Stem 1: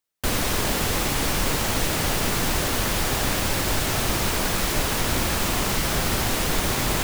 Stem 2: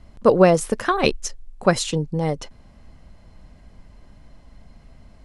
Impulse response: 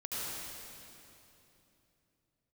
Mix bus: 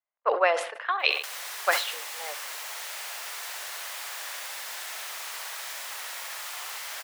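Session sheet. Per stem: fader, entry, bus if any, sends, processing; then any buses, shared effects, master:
-12.0 dB, 1.00 s, no send, echo send -5 dB, upward compressor, threshold -39 dBFS
-6.0 dB, 0.00 s, no send, echo send -19.5 dB, low-pass opened by the level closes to 1900 Hz, open at -11.5 dBFS; resonant high shelf 4800 Hz -13 dB, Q 1.5; three-band expander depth 70%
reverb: off
echo: feedback echo 65 ms, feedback 45%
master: Bessel high-pass 970 Hz, order 6; bell 1900 Hz +3 dB 0.34 oct; sustainer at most 92 dB/s

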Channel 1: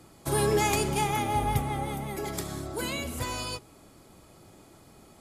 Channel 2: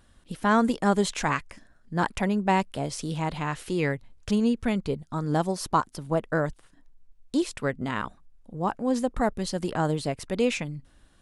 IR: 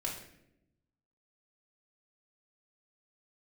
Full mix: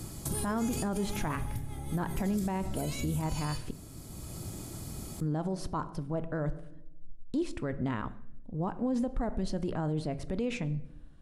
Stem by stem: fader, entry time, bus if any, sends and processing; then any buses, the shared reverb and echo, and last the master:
+2.5 dB, 0.00 s, send -14.5 dB, tone controls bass +14 dB, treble +12 dB; compressor 12:1, threshold -29 dBFS, peak gain reduction 20.5 dB; auto duck -12 dB, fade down 1.35 s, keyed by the second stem
-6.0 dB, 0.00 s, muted 3.71–5.21, send -13.5 dB, tilt -2.5 dB/oct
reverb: on, RT60 0.80 s, pre-delay 3 ms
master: limiter -23.5 dBFS, peak gain reduction 11.5 dB

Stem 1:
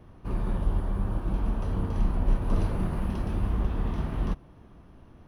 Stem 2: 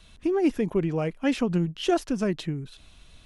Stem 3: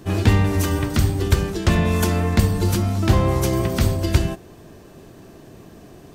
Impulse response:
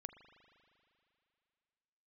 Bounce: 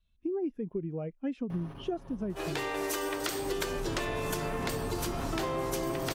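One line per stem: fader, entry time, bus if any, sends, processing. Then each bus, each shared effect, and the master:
-3.0 dB, 1.50 s, no send, low shelf 95 Hz -11.5 dB; comb 7.3 ms, depth 74%; fast leveller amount 100%; auto duck -18 dB, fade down 1.90 s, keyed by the second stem
-5.0 dB, 0.00 s, no send, spectral expander 1.5:1
-7.0 dB, 2.30 s, no send, steep high-pass 330 Hz 48 dB/oct; AGC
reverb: off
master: compressor 6:1, threshold -30 dBFS, peak gain reduction 12.5 dB

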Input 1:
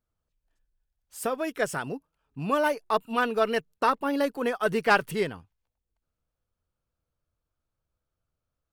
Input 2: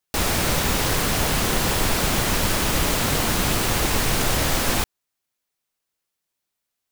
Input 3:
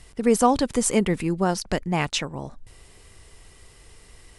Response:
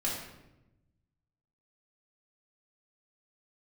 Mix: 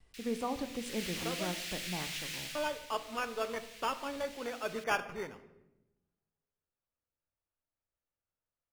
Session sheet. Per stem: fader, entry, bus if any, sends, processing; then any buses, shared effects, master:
-10.5 dB, 0.00 s, muted 1.55–2.55, send -13 dB, low shelf 300 Hz -10 dB; sample-and-hold 11×
0.73 s -18.5 dB -> 1.04 s -8.5 dB -> 2.4 s -8.5 dB -> 2.86 s -21 dB, 0.00 s, no send, inverse Chebyshev high-pass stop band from 630 Hz, stop band 60 dB
-18.5 dB, 0.00 s, send -12.5 dB, gate with hold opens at -43 dBFS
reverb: on, RT60 0.95 s, pre-delay 3 ms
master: LPF 2800 Hz 6 dB/oct

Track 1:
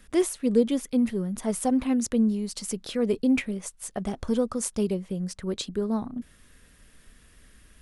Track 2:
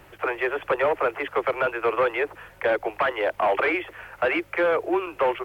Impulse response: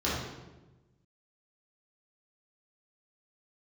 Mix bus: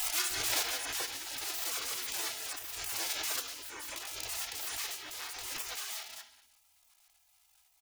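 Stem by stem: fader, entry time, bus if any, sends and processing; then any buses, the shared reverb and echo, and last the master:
-7.5 dB, 0.00 s, send -10.5 dB, half-waves squared off; inverse Chebyshev high-pass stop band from 500 Hz, stop band 40 dB
-1.5 dB, 0.30 s, no send, compressor 2:1, threshold -30 dBFS, peak gain reduction 7 dB; auto duck -13 dB, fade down 1.20 s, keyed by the first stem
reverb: on, RT60 1.1 s, pre-delay 3 ms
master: comb 2.7 ms, depth 83%; spectral gate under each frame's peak -15 dB weak; backwards sustainer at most 25 dB/s

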